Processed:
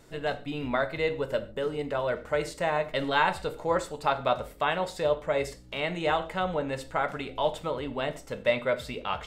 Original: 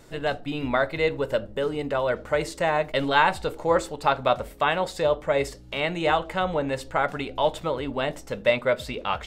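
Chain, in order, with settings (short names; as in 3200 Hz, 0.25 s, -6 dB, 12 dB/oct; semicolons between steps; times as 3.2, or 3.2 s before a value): non-linear reverb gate 0.16 s falling, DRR 10.5 dB; gain -4.5 dB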